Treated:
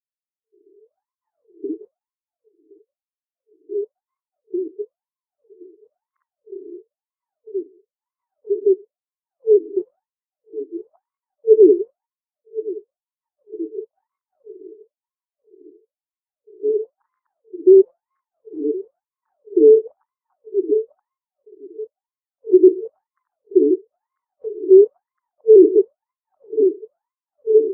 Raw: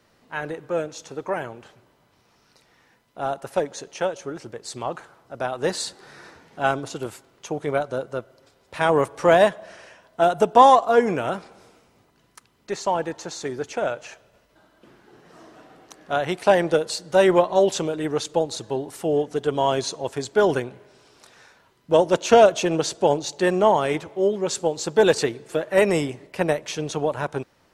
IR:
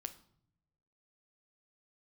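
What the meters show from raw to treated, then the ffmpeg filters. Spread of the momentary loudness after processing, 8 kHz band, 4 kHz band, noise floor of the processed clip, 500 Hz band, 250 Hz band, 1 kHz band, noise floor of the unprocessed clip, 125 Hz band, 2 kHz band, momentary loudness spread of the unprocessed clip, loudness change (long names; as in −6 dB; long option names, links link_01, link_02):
23 LU, below −40 dB, below −40 dB, below −85 dBFS, +4.0 dB, +5.5 dB, below −40 dB, −62 dBFS, below −30 dB, below −40 dB, 16 LU, +5.0 dB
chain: -filter_complex "[0:a]afftfilt=real='re*pow(10,14/40*sin(2*PI*(0.56*log(max(b,1)*sr/1024/100)/log(2)-(-0.37)*(pts-256)/sr)))':imag='im*pow(10,14/40*sin(2*PI*(0.56*log(max(b,1)*sr/1024/100)/log(2)-(-0.37)*(pts-256)/sr)))':win_size=1024:overlap=0.75,lowpass=frequency=4500:width=0.5412,lowpass=frequency=4500:width=1.3066,asplit=2[link_01][link_02];[link_02]aecho=0:1:1067|2134|3201:0.133|0.048|0.0173[link_03];[link_01][link_03]amix=inputs=2:normalize=0,afftfilt=real='re*(1-between(b*sr/4096,450,2800))':imag='im*(1-between(b*sr/4096,450,2800))':win_size=4096:overlap=0.75,acrossover=split=200|2400[link_04][link_05][link_06];[link_05]adelay=530[link_07];[link_04]adelay=570[link_08];[link_08][link_07][link_06]amix=inputs=3:normalize=0,adynamicequalizer=threshold=0.0126:dfrequency=380:dqfactor=7:tfrequency=380:tqfactor=7:attack=5:release=100:ratio=0.375:range=3:mode=boostabove:tftype=bell,alimiter=level_in=14.5dB:limit=-1dB:release=50:level=0:latency=1,afftfilt=real='re*between(b*sr/1024,410*pow(1500/410,0.5+0.5*sin(2*PI*1*pts/sr))/1.41,410*pow(1500/410,0.5+0.5*sin(2*PI*1*pts/sr))*1.41)':imag='im*between(b*sr/1024,410*pow(1500/410,0.5+0.5*sin(2*PI*1*pts/sr))/1.41,410*pow(1500/410,0.5+0.5*sin(2*PI*1*pts/sr))*1.41)':win_size=1024:overlap=0.75,volume=-1dB"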